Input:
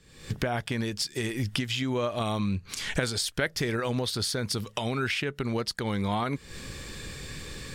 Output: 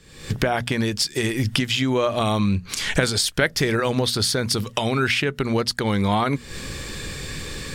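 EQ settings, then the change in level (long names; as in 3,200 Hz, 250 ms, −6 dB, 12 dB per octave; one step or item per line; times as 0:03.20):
mains-hum notches 60/120/180/240 Hz
+8.0 dB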